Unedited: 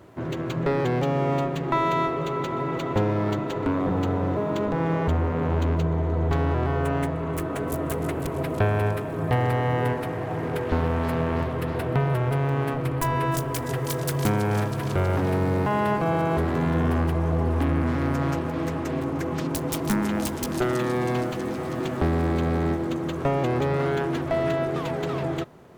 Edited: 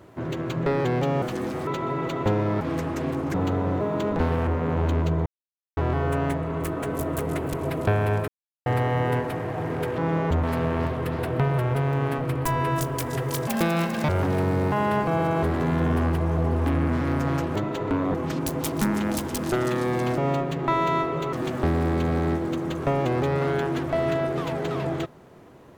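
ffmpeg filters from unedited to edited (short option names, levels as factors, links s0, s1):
-filter_complex "[0:a]asplit=19[s0][s1][s2][s3][s4][s5][s6][s7][s8][s9][s10][s11][s12][s13][s14][s15][s16][s17][s18];[s0]atrim=end=1.222[s19];[s1]atrim=start=21.258:end=21.712[s20];[s2]atrim=start=2.368:end=3.312[s21];[s3]atrim=start=18.498:end=19.232[s22];[s4]atrim=start=3.898:end=4.752[s23];[s5]atrim=start=10.708:end=10.992[s24];[s6]atrim=start=5.198:end=5.99,asetpts=PTS-STARTPTS,afade=t=out:st=0.788:d=0.004:c=hsin[s25];[s7]atrim=start=5.99:end=6.5,asetpts=PTS-STARTPTS,volume=0[s26];[s8]atrim=start=6.5:end=9.01,asetpts=PTS-STARTPTS,afade=t=in:d=0.004:c=hsin,afade=t=out:st=2.506:d=0.004:c=hsin[s27];[s9]atrim=start=9.01:end=9.39,asetpts=PTS-STARTPTS,volume=0[s28];[s10]atrim=start=9.39:end=10.712,asetpts=PTS-STARTPTS,afade=t=in:d=0.004:c=hsin[s29];[s11]atrim=start=4.748:end=5.202[s30];[s12]atrim=start=10.988:end=14.034[s31];[s13]atrim=start=14.03:end=15.03,asetpts=PTS-STARTPTS,asetrate=71442,aresample=44100,atrim=end_sample=27222,asetpts=PTS-STARTPTS[s32];[s14]atrim=start=15.026:end=18.502[s33];[s15]atrim=start=3.308:end=3.902[s34];[s16]atrim=start=19.228:end=21.262[s35];[s17]atrim=start=1.218:end=2.372[s36];[s18]atrim=start=21.708[s37];[s19][s20]acrossfade=d=0.004:c1=hsin:c2=hsin[s38];[s38][s21]acrossfade=d=0.004:c1=hsin:c2=hsin[s39];[s39][s22]acrossfade=d=0.004:c1=hsin:c2=hsin[s40];[s40][s23]acrossfade=d=0.004:c1=hsin:c2=hsin[s41];[s41][s24]acrossfade=d=0.004:c1=hsin:c2=hsin[s42];[s25][s26][s27][s28][s29]concat=n=5:v=0:a=1[s43];[s42][s43]acrossfade=d=0.004:c1=hsin:c2=hsin[s44];[s44][s30]acrossfade=d=0.004:c1=hsin:c2=hsin[s45];[s45][s31]acrossfade=d=0.004:c1=hsin:c2=hsin[s46];[s46][s32]acrossfade=d=0.004:c1=hsin:c2=hsin[s47];[s47][s33]acrossfade=d=0.004:c1=hsin:c2=hsin[s48];[s48][s34]acrossfade=d=0.004:c1=hsin:c2=hsin[s49];[s49][s35]acrossfade=d=0.004:c1=hsin:c2=hsin[s50];[s50][s36]acrossfade=d=0.004:c1=hsin:c2=hsin[s51];[s51][s37]acrossfade=d=0.004:c1=hsin:c2=hsin"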